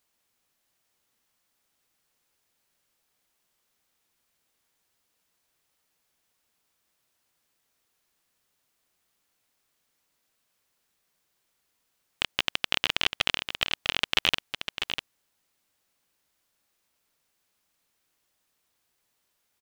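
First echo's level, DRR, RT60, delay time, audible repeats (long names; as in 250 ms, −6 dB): −8.0 dB, no reverb audible, no reverb audible, 648 ms, 1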